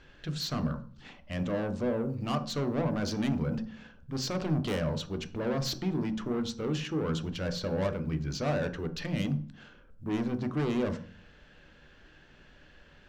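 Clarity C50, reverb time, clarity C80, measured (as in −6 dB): 14.0 dB, 0.45 s, 18.0 dB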